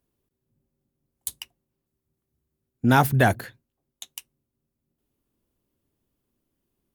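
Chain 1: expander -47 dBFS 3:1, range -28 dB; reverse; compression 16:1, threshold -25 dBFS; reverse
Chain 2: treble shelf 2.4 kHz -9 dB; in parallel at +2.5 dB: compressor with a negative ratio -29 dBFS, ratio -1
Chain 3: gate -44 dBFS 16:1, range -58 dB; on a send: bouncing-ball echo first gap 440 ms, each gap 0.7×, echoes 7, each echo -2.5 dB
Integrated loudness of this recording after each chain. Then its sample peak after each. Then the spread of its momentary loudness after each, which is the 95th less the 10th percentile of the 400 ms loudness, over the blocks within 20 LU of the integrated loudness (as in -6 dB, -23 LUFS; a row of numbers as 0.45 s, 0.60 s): -34.5 LUFS, -22.5 LUFS, -21.5 LUFS; -13.5 dBFS, -5.5 dBFS, -4.0 dBFS; 14 LU, 18 LU, 20 LU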